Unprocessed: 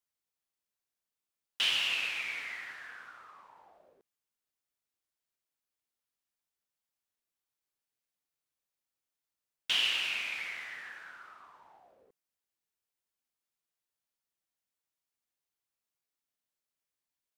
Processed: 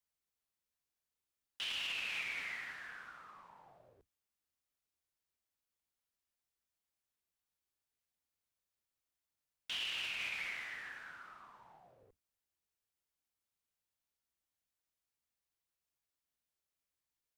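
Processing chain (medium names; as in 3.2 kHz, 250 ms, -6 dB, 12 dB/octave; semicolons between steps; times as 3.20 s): octave divider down 2 oct, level +1 dB; peak limiter -29 dBFS, peak gain reduction 11 dB; trim -2 dB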